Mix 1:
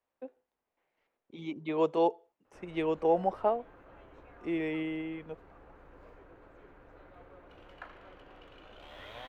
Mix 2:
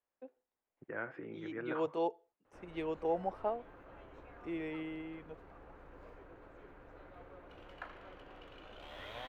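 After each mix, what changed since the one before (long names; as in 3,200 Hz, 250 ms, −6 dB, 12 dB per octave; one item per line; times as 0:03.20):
first voice −7.5 dB
second voice: unmuted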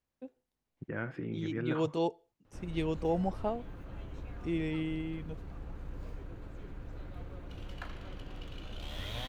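master: remove three-way crossover with the lows and the highs turned down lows −17 dB, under 360 Hz, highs −15 dB, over 2,400 Hz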